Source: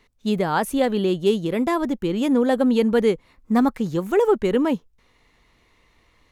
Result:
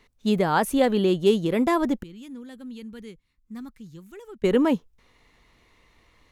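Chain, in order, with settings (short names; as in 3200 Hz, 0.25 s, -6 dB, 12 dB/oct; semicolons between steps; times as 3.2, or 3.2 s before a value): 2.03–4.44 passive tone stack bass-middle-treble 6-0-2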